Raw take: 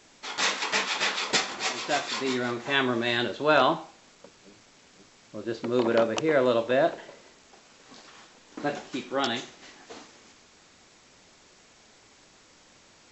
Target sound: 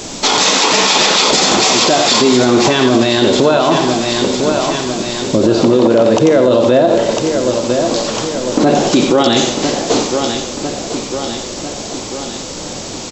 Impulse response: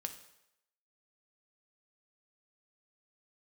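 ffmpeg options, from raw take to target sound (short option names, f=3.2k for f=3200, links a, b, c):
-filter_complex "[0:a]equalizer=f=1.8k:t=o:w=1.5:g=-11.5,acompressor=threshold=-34dB:ratio=6,aecho=1:1:1000|2000|3000|4000|5000|6000:0.251|0.143|0.0816|0.0465|0.0265|0.0151,asplit=2[a][b];[1:a]atrim=start_sample=2205,adelay=87[c];[b][c]afir=irnorm=-1:irlink=0,volume=-7.5dB[d];[a][d]amix=inputs=2:normalize=0,alimiter=level_in=33dB:limit=-1dB:release=50:level=0:latency=1,volume=-1dB"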